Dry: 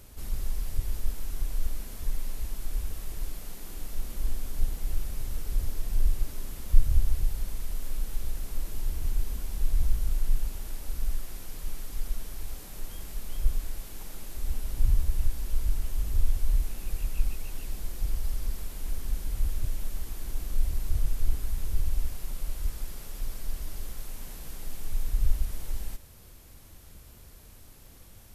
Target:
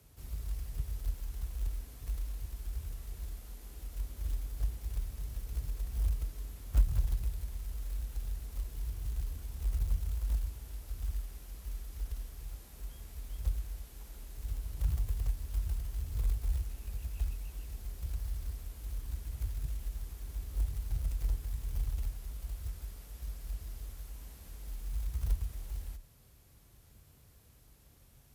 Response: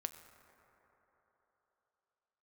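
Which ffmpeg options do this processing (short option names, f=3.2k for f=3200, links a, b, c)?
-filter_complex "[0:a]acrusher=bits=6:mode=log:mix=0:aa=0.000001,afreqshift=30[a];[1:a]atrim=start_sample=2205,atrim=end_sample=3528,asetrate=79380,aresample=44100[b];[a][b]afir=irnorm=-1:irlink=0,volume=-3dB"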